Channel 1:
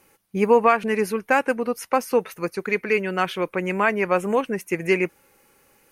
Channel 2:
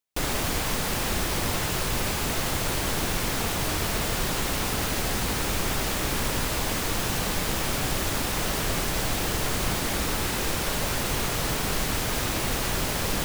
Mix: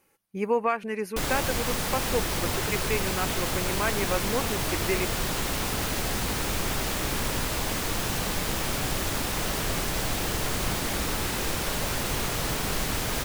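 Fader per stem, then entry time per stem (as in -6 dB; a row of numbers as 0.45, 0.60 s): -8.5, -1.5 dB; 0.00, 1.00 s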